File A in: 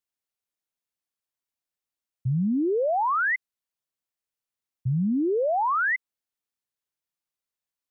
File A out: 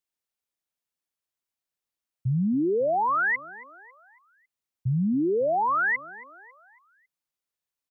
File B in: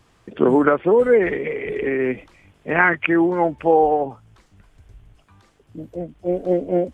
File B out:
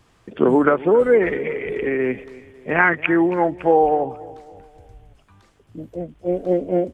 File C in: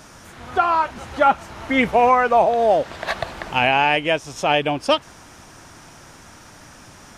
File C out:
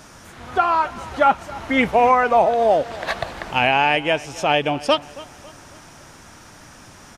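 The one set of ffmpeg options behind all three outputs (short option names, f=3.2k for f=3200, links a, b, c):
-filter_complex "[0:a]asplit=2[a][b];[b]adelay=275,lowpass=f=5k:p=1,volume=-19dB,asplit=2[c][d];[d]adelay=275,lowpass=f=5k:p=1,volume=0.46,asplit=2[e][f];[f]adelay=275,lowpass=f=5k:p=1,volume=0.46,asplit=2[g][h];[h]adelay=275,lowpass=f=5k:p=1,volume=0.46[i];[a][c][e][g][i]amix=inputs=5:normalize=0"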